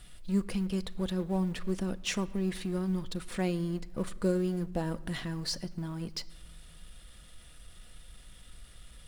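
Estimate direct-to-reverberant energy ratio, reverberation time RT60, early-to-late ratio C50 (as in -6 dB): 11.5 dB, 1.3 s, 20.0 dB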